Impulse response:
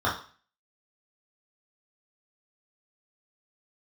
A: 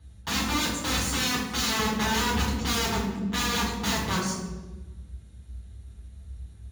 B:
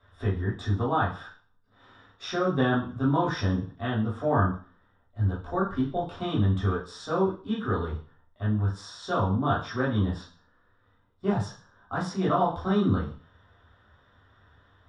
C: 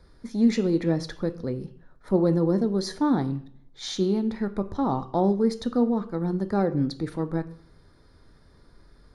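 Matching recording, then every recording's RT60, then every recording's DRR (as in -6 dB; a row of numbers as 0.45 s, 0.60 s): B; 1.2 s, 0.40 s, 0.60 s; -6.0 dB, -7.0 dB, 11.0 dB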